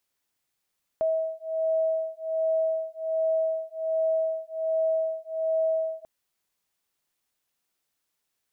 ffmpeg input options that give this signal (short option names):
-f lavfi -i "aevalsrc='0.0447*(sin(2*PI*643*t)+sin(2*PI*644.3*t))':d=5.04:s=44100"